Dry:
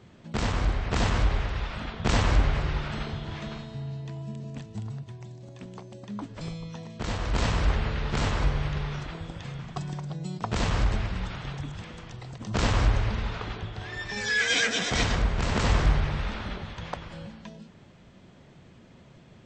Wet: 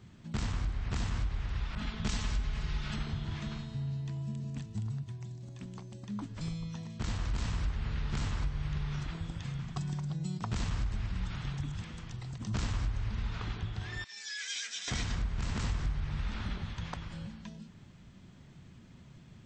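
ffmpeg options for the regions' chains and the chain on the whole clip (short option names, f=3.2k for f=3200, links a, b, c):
-filter_complex "[0:a]asettb=1/sr,asplit=3[a][b][c];[a]atrim=end=1.754[d];[b]atrim=start=1.75:end=2.96,asetpts=PTS-STARTPTS,afade=t=in:d=0.004:c=qsin,afade=t=out:st=1.206:d=0.004:c=qsin,aecho=1:1:4.7:0.41,atrim=end_sample=53361,adynamicequalizer=threshold=0.00794:dfrequency=2200:dqfactor=0.7:tfrequency=2200:tqfactor=0.7:attack=5:release=100:ratio=0.375:range=3:mode=boostabove:tftype=highshelf[e];[c]atrim=start=2.956[f];[d][e]acrossfade=d=0.004:c1=hsin:c2=qsin[g];[g][f]acrossfade=d=0.004:c1=qsin:c2=hsin,asettb=1/sr,asplit=3[h][i][j];[h]atrim=end=14.044[k];[i]atrim=start=14.04:end=14.88,asetpts=PTS-STARTPTS,afade=t=in:d=0.004:c=qsin,afade=t=out:st=0.836:d=0.004:c=qsin,highpass=210,lowpass=5.7k,aderivative[l];[j]atrim=start=14.876[m];[k][l]acrossfade=d=0.004:c1=hsin:c2=qsin[n];[n][m]acrossfade=d=0.004:c1=qsin:c2=hsin,equalizer=f=530:w=0.83:g=-12,acompressor=threshold=-31dB:ratio=6,equalizer=f=2.6k:w=0.47:g=-5,volume=1.5dB"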